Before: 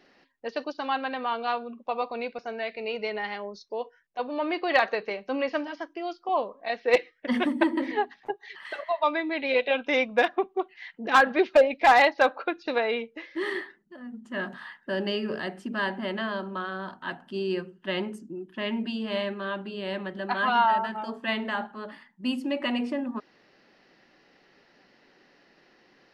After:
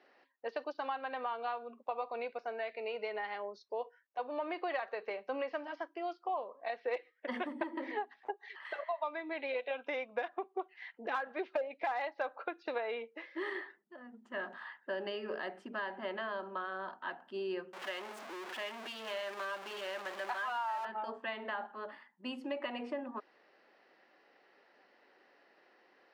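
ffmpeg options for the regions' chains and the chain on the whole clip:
-filter_complex "[0:a]asettb=1/sr,asplit=3[a][b][c];[a]atrim=end=17.734[d];[b]atrim=start=17.73:end=20.85,asetpts=PTS-STARTPTS,afade=t=in:d=0.004:c=qsin,afade=t=out:st=3.116:d=0.004:c=qsin,aeval=exprs='val(0)+0.5*0.0422*sgn(val(0))':c=same,highpass=f=940:p=1[e];[c]atrim=start=20.846[f];[d][e]acrossfade=d=0.004:c1=hsin:c2=qsin[g];[g][f]acrossfade=d=0.004:c1=qsin:c2=hsin,highpass=490,acompressor=threshold=-31dB:ratio=6,lowpass=f=1.4k:p=1,volume=-1dB"

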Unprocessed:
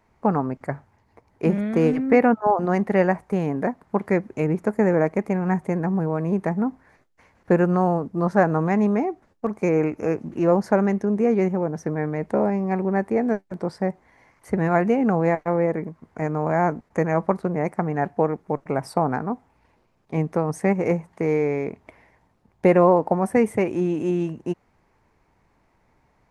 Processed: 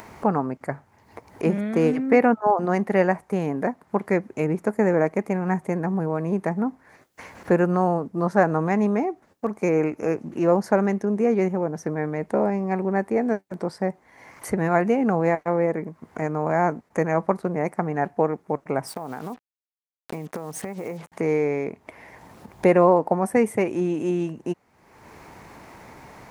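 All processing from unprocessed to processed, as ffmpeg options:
-filter_complex "[0:a]asettb=1/sr,asplit=3[a][b][c];[a]atrim=end=18.874[d];[b]atrim=start=18.87:end=21.12,asetpts=PTS-STARTPTS,afade=t=in:d=0.004:c=qsin,afade=t=out:st=2.246:d=0.004:c=qsin,equalizer=f=760:w=0.31:g=2,acrusher=bits=6:mix=0:aa=0.5,acompressor=threshold=-28dB:ratio=8:attack=3.2:release=140:knee=1:detection=peak[e];[c]atrim=start=21.116[f];[d][e]acrossfade=d=0.004:c1=hsin:c2=qsin[g];[g][f]acrossfade=d=0.004:c1=qsin:c2=hsin,highpass=f=150:p=1,highshelf=f=8.1k:g=7,acompressor=mode=upward:threshold=-27dB:ratio=2.5"

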